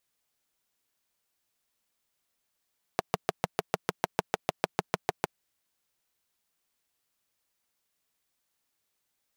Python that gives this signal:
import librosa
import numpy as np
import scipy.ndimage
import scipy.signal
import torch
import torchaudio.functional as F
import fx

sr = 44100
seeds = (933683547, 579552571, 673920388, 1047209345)

y = fx.engine_single(sr, seeds[0], length_s=2.27, rpm=800, resonances_hz=(180.0, 430.0, 670.0))